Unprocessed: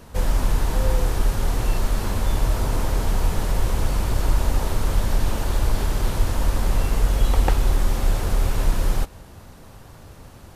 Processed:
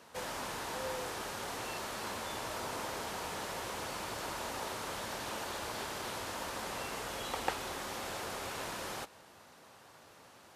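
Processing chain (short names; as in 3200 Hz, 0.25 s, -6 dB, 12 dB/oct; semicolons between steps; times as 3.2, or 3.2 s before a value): weighting filter A; gain -7 dB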